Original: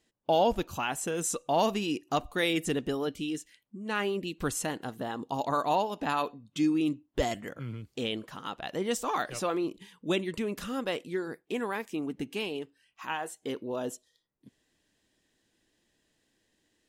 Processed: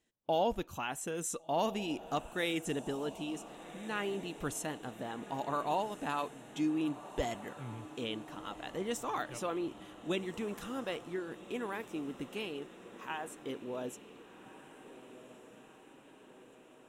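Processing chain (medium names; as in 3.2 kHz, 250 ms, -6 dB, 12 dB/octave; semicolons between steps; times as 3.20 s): peaking EQ 4.7 kHz -8 dB 0.26 oct; echo that smears into a reverb 1492 ms, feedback 62%, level -14.5 dB; trim -6 dB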